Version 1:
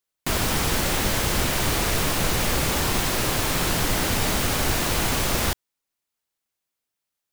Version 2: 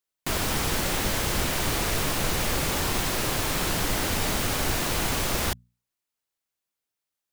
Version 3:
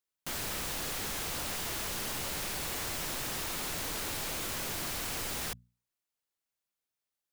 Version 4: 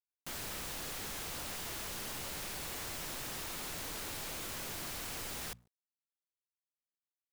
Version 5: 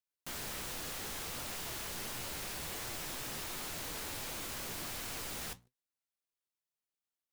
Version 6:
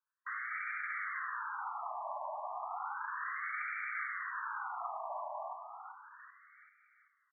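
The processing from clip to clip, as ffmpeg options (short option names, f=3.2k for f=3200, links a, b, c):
-af "bandreject=f=60:t=h:w=6,bandreject=f=120:t=h:w=6,bandreject=f=180:t=h:w=6,bandreject=f=240:t=h:w=6,volume=-3dB"
-af "aeval=exprs='0.0422*(abs(mod(val(0)/0.0422+3,4)-2)-1)':c=same,volume=-4dB"
-af "acrusher=bits=10:mix=0:aa=0.000001,volume=-5.5dB"
-af "flanger=delay=7.9:depth=8.6:regen=65:speed=1.4:shape=sinusoidal,volume=4.5dB"
-filter_complex "[0:a]asplit=2[a][b];[b]aecho=0:1:388|776|1164|1552|1940:0.447|0.197|0.0865|0.0381|0.0167[c];[a][c]amix=inputs=2:normalize=0,afftfilt=real='re*between(b*sr/1024,820*pow(1700/820,0.5+0.5*sin(2*PI*0.33*pts/sr))/1.41,820*pow(1700/820,0.5+0.5*sin(2*PI*0.33*pts/sr))*1.41)':imag='im*between(b*sr/1024,820*pow(1700/820,0.5+0.5*sin(2*PI*0.33*pts/sr))/1.41,820*pow(1700/820,0.5+0.5*sin(2*PI*0.33*pts/sr))*1.41)':win_size=1024:overlap=0.75,volume=11dB"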